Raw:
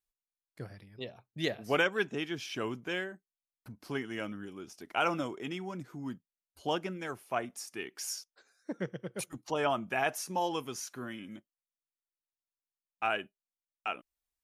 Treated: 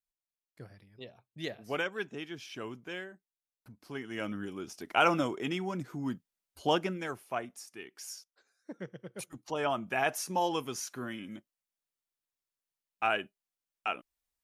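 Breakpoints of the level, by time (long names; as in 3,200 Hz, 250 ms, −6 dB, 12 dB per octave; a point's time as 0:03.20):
0:03.92 −5.5 dB
0:04.36 +4.5 dB
0:06.81 +4.5 dB
0:07.72 −6 dB
0:08.88 −6 dB
0:10.21 +2 dB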